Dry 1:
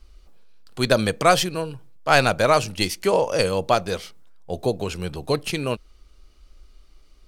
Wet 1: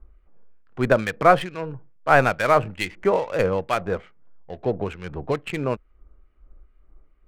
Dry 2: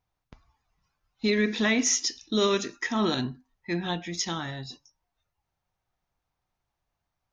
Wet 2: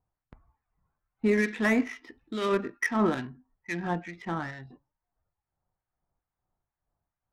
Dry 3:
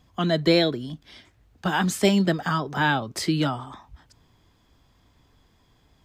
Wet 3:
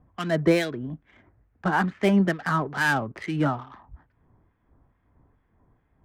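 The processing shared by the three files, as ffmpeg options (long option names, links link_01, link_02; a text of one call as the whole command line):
ffmpeg -i in.wav -filter_complex "[0:a]lowpass=frequency=2000:width_type=q:width=1.5,adynamicsmooth=sensitivity=4.5:basefreq=1300,acrossover=split=1500[link_01][link_02];[link_01]aeval=exprs='val(0)*(1-0.7/2+0.7/2*cos(2*PI*2.3*n/s))':channel_layout=same[link_03];[link_02]aeval=exprs='val(0)*(1-0.7/2-0.7/2*cos(2*PI*2.3*n/s))':channel_layout=same[link_04];[link_03][link_04]amix=inputs=2:normalize=0,volume=1.5dB" out.wav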